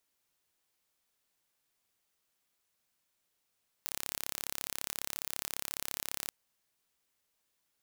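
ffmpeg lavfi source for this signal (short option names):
-f lavfi -i "aevalsrc='0.355*eq(mod(n,1275),0)':d=2.43:s=44100"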